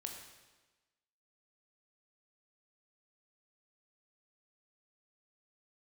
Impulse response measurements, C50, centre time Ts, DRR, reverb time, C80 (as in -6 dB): 5.0 dB, 39 ms, 2.0 dB, 1.2 s, 6.5 dB